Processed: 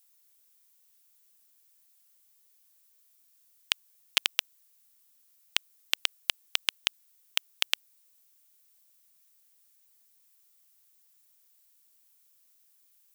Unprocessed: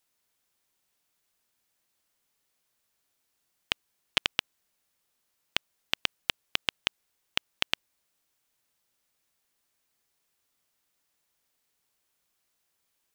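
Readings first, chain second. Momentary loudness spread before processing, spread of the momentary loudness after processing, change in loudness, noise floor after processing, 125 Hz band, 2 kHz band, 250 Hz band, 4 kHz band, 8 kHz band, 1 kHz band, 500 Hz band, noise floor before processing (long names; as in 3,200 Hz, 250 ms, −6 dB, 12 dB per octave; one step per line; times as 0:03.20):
5 LU, 5 LU, +1.5 dB, −65 dBFS, below −10 dB, 0.0 dB, −9.5 dB, +2.0 dB, +7.5 dB, −3.5 dB, −6.0 dB, −78 dBFS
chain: RIAA equalisation recording
level −3.5 dB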